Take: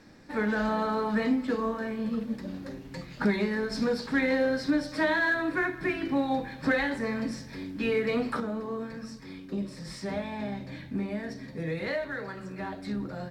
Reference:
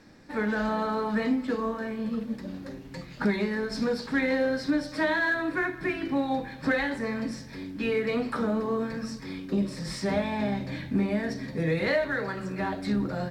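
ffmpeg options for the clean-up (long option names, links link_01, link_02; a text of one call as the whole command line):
ffmpeg -i in.wav -af "asetnsamples=nb_out_samples=441:pad=0,asendcmd='8.4 volume volume 6dB',volume=0dB" out.wav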